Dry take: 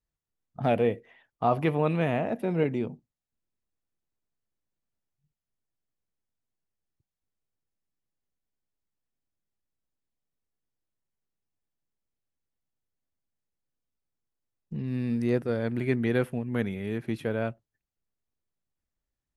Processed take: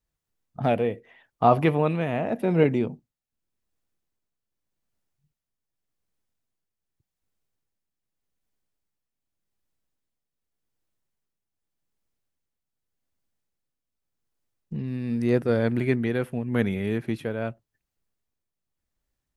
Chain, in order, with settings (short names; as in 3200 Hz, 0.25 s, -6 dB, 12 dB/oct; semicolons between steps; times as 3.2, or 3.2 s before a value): tremolo triangle 0.85 Hz, depth 60%; gain +6.5 dB